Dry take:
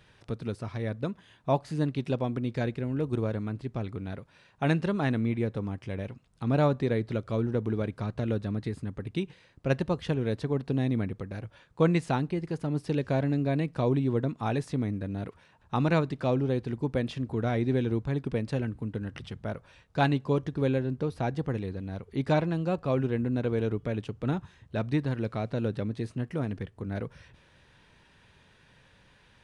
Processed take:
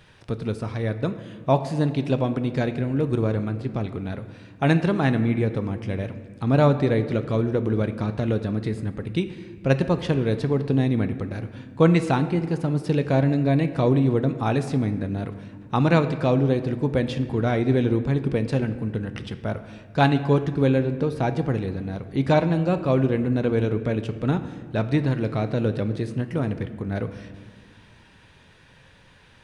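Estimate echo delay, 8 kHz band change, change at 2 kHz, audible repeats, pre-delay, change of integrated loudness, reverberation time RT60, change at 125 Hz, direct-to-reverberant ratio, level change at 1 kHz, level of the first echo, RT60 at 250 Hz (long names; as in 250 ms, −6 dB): no echo audible, can't be measured, +6.5 dB, no echo audible, 6 ms, +6.5 dB, 1.7 s, +6.5 dB, 9.5 dB, +6.5 dB, no echo audible, 2.6 s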